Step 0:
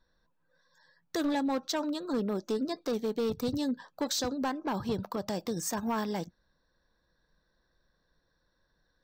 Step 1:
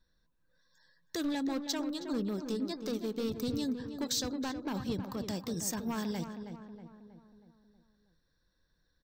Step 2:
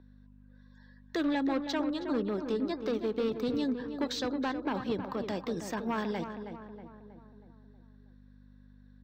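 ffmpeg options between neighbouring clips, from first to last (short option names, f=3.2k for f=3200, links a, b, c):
-filter_complex "[0:a]equalizer=f=790:t=o:w=2.2:g=-9,asplit=2[a][b];[b]adelay=319,lowpass=f=1.9k:p=1,volume=-8dB,asplit=2[c][d];[d]adelay=319,lowpass=f=1.9k:p=1,volume=0.53,asplit=2[e][f];[f]adelay=319,lowpass=f=1.9k:p=1,volume=0.53,asplit=2[g][h];[h]adelay=319,lowpass=f=1.9k:p=1,volume=0.53,asplit=2[i][j];[j]adelay=319,lowpass=f=1.9k:p=1,volume=0.53,asplit=2[k][l];[l]adelay=319,lowpass=f=1.9k:p=1,volume=0.53[m];[c][e][g][i][k][m]amix=inputs=6:normalize=0[n];[a][n]amix=inputs=2:normalize=0"
-filter_complex "[0:a]aeval=exprs='val(0)+0.00355*(sin(2*PI*50*n/s)+sin(2*PI*2*50*n/s)/2+sin(2*PI*3*50*n/s)/3+sin(2*PI*4*50*n/s)/4+sin(2*PI*5*50*n/s)/5)':c=same,acrossover=split=250 3400:gain=0.2 1 0.0794[a][b][c];[a][b][c]amix=inputs=3:normalize=0,volume=6.5dB"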